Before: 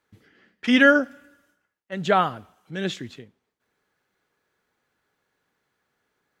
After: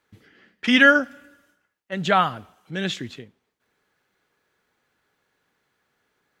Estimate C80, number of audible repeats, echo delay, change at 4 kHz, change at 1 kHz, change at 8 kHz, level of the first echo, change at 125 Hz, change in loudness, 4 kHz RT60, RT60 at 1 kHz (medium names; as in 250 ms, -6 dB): no reverb, no echo, no echo, +4.5 dB, +2.0 dB, +3.0 dB, no echo, +2.0 dB, +1.5 dB, no reverb, no reverb